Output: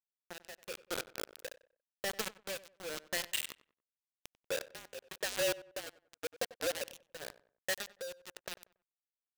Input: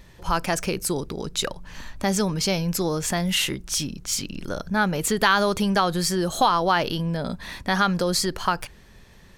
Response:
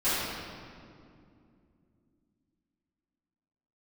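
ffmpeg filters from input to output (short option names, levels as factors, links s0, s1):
-filter_complex "[0:a]highpass=f=80:p=1,acompressor=threshold=0.0631:ratio=4,asplit=3[s0][s1][s2];[s0]afade=t=out:st=4.34:d=0.02[s3];[s1]afreqshift=-47,afade=t=in:st=4.34:d=0.02,afade=t=out:st=6.85:d=0.02[s4];[s2]afade=t=in:st=6.85:d=0.02[s5];[s3][s4][s5]amix=inputs=3:normalize=0,asplit=3[s6][s7][s8];[s6]bandpass=f=530:t=q:w=8,volume=1[s9];[s7]bandpass=f=1840:t=q:w=8,volume=0.501[s10];[s8]bandpass=f=2480:t=q:w=8,volume=0.355[s11];[s9][s10][s11]amix=inputs=3:normalize=0,asoftclip=type=tanh:threshold=0.0501,acrusher=bits=5:mix=0:aa=0.000001,tremolo=f=0.92:d=0.81,asplit=2[s12][s13];[s13]adelay=94,lowpass=f=2100:p=1,volume=0.141,asplit=2[s14][s15];[s15]adelay=94,lowpass=f=2100:p=1,volume=0.32,asplit=2[s16][s17];[s17]adelay=94,lowpass=f=2100:p=1,volume=0.32[s18];[s12][s14][s16][s18]amix=inputs=4:normalize=0,adynamicequalizer=threshold=0.00178:dfrequency=2300:dqfactor=0.7:tfrequency=2300:tqfactor=0.7:attack=5:release=100:ratio=0.375:range=3:mode=boostabove:tftype=highshelf,volume=1.19"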